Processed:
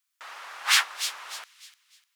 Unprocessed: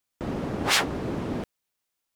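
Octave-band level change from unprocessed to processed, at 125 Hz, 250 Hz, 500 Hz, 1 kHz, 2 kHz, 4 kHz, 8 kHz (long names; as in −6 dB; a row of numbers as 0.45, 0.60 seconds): below −40 dB, below −40 dB, −22.0 dB, −2.0 dB, +2.5 dB, +3.0 dB, +3.5 dB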